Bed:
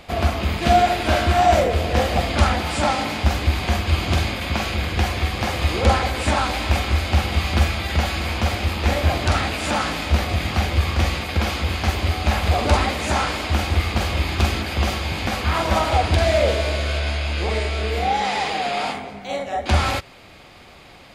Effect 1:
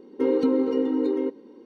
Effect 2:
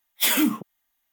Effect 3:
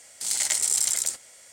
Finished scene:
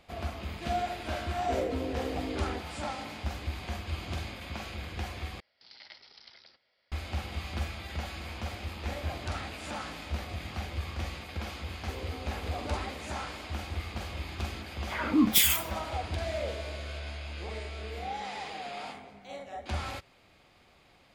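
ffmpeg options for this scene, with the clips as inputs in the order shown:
-filter_complex "[1:a]asplit=2[s0][s1];[0:a]volume=0.158[s2];[s0]equalizer=f=77:w=0.32:g=-6.5[s3];[3:a]aresample=11025,aresample=44100[s4];[s1]highpass=f=590:p=1[s5];[2:a]acrossover=split=520|1800[s6][s7][s8];[s6]adelay=80[s9];[s8]adelay=450[s10];[s9][s7][s10]amix=inputs=3:normalize=0[s11];[s2]asplit=2[s12][s13];[s12]atrim=end=5.404[s14];[s4]atrim=end=1.52,asetpts=PTS-STARTPTS,volume=0.133[s15];[s13]atrim=start=6.916[s16];[s3]atrim=end=1.65,asetpts=PTS-STARTPTS,volume=0.282,afade=t=in:d=0.004:c=hsin,afade=t=out:st=1.646:d=0.004:c=hsin,adelay=1290[s17];[s5]atrim=end=1.65,asetpts=PTS-STARTPTS,volume=0.133,afade=t=in:d=0.004:c=hsin,afade=t=out:st=1.646:d=0.004:c=hsin,adelay=11690[s18];[s11]atrim=end=1.12,asetpts=PTS-STARTPTS,volume=0.944,afade=t=in:d=0.004:c=hsin,afade=t=out:st=1.116:d=0.004:c=hsin,adelay=14680[s19];[s14][s15]acrossfade=d=0.004:c1=hsin:c2=hsin[s20];[s20][s16]acrossfade=d=0.004:c1=hsin:c2=hsin[s21];[s21][s17][s18][s19]amix=inputs=4:normalize=0"

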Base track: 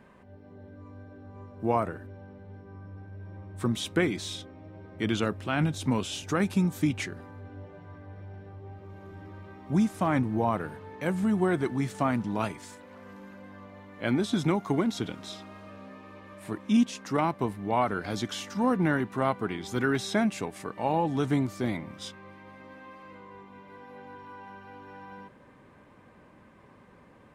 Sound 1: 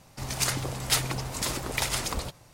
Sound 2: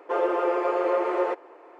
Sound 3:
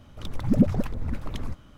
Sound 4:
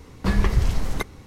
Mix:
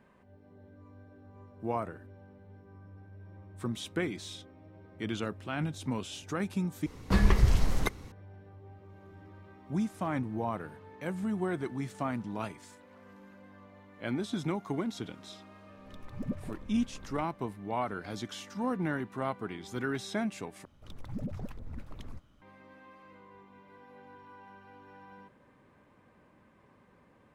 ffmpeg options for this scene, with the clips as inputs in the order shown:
-filter_complex "[3:a]asplit=2[s0][s1];[0:a]volume=0.447[s2];[s1]acompressor=threshold=0.0631:ratio=6:attack=29:release=50:knee=1:detection=peak[s3];[s2]asplit=3[s4][s5][s6];[s4]atrim=end=6.864[s7];[4:a]atrim=end=1.26,asetpts=PTS-STARTPTS,volume=0.708[s8];[s5]atrim=start=8.116:end=20.654[s9];[s3]atrim=end=1.77,asetpts=PTS-STARTPTS,volume=0.237[s10];[s6]atrim=start=22.416[s11];[s0]atrim=end=1.77,asetpts=PTS-STARTPTS,volume=0.15,afade=t=in:d=0.004:c=hsin,afade=t=out:st=1.766:d=0.004:c=hsin,adelay=15690[s12];[s7][s8]acrossfade=d=0.004:c1=hsin:c2=hsin[s13];[s13][s9]acrossfade=d=0.004:c1=hsin:c2=hsin[s14];[s14][s10]acrossfade=d=0.004:c1=hsin:c2=hsin[s15];[s15][s11]acrossfade=d=0.004:c1=hsin:c2=hsin[s16];[s16][s12]amix=inputs=2:normalize=0"

